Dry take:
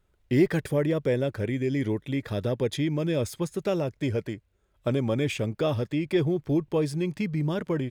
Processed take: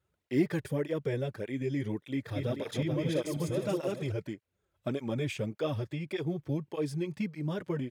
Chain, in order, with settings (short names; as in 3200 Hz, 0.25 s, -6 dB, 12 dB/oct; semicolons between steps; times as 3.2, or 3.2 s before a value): 2.06–4.12 regenerating reverse delay 0.218 s, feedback 54%, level -2.5 dB; HPF 73 Hz; tape flanging out of phase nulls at 1.7 Hz, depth 5.1 ms; gain -3.5 dB